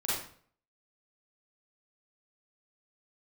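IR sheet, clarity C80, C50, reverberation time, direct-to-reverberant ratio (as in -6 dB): 4.5 dB, -2.0 dB, 0.50 s, -8.5 dB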